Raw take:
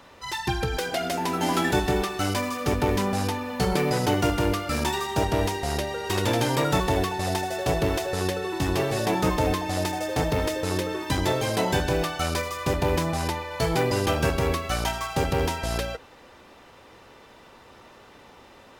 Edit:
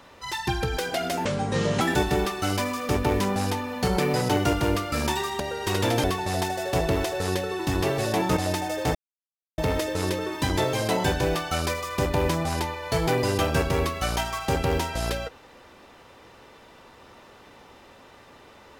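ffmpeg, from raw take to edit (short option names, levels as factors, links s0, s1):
-filter_complex "[0:a]asplit=7[s0][s1][s2][s3][s4][s5][s6];[s0]atrim=end=1.254[s7];[s1]atrim=start=1.25:end=1.58,asetpts=PTS-STARTPTS,asetrate=26019,aresample=44100,atrim=end_sample=24666,asetpts=PTS-STARTPTS[s8];[s2]atrim=start=1.576:end=5.172[s9];[s3]atrim=start=5.828:end=6.472[s10];[s4]atrim=start=6.968:end=9.302[s11];[s5]atrim=start=9.678:end=10.26,asetpts=PTS-STARTPTS,afade=t=out:st=0.578:d=0.004:c=hsin,apad=pad_dur=0.63[s12];[s6]atrim=start=10.26,asetpts=PTS-STARTPTS,afade=t=in:d=0.004:c=hsin[s13];[s7][s8]acrossfade=d=0.004:c1=hsin:c2=hsin[s14];[s14][s9]acrossfade=d=0.004:c1=hsin:c2=hsin[s15];[s15][s10]acrossfade=d=0.004:c1=hsin:c2=hsin[s16];[s16][s11]acrossfade=d=0.004:c1=hsin:c2=hsin[s17];[s12][s13]concat=n=2:v=0:a=1[s18];[s17][s18]acrossfade=d=0.004:c1=hsin:c2=hsin"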